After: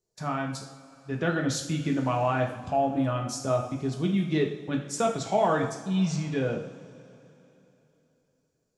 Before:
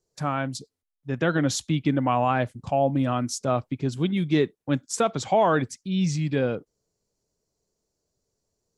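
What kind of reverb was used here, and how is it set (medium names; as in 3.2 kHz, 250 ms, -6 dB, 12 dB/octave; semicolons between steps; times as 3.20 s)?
two-slope reverb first 0.57 s, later 3.4 s, from -18 dB, DRR 1 dB; trim -5.5 dB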